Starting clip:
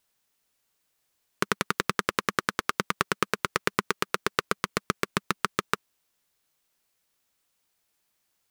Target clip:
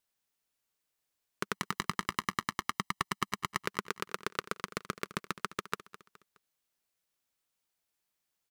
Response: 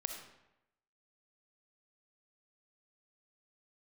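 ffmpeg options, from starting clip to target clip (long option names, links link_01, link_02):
-filter_complex "[0:a]asettb=1/sr,asplit=3[link_01][link_02][link_03];[link_01]atrim=end=1.544[link_04];[link_02]atrim=start=1.54:end=3.66,asetpts=PTS-STARTPTS,afade=type=in:duration=0.004:curve=qsin,afade=type=out:start_time=2.116:duration=0.004:curve=qsin,aecho=1:1:1:0.88,atrim=end_sample=93492[link_05];[link_03]atrim=start=3.656[link_06];[link_04][link_05]acrossfade=duration=0.004:curve1=hsin:curve2=qsin[link_07];[link_07][link_06]acrossfade=duration=0.004:curve1=qsin:curve2=hsin,aecho=1:1:209|418|627:0.158|0.0618|0.0241,volume=-9dB"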